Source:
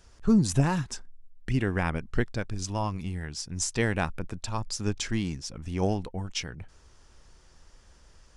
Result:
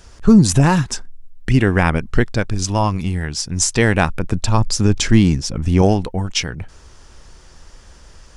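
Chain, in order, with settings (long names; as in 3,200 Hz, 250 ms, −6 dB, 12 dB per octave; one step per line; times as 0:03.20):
0:04.30–0:05.82: low-shelf EQ 490 Hz +6 dB
boost into a limiter +13.5 dB
level −1 dB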